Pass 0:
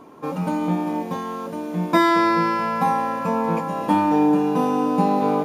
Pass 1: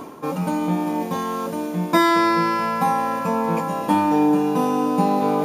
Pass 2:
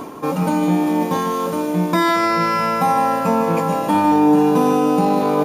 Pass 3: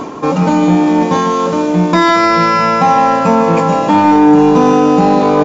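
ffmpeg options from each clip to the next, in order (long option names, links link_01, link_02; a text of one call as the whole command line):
ffmpeg -i in.wav -af "highshelf=frequency=5500:gain=8,areverse,acompressor=mode=upward:threshold=-19dB:ratio=2.5,areverse" out.wav
ffmpeg -i in.wav -af "alimiter=limit=-12.5dB:level=0:latency=1:release=15,aecho=1:1:153:0.355,volume=4.5dB" out.wav
ffmpeg -i in.wav -af "acontrast=66,aresample=16000,aresample=44100,volume=1.5dB" out.wav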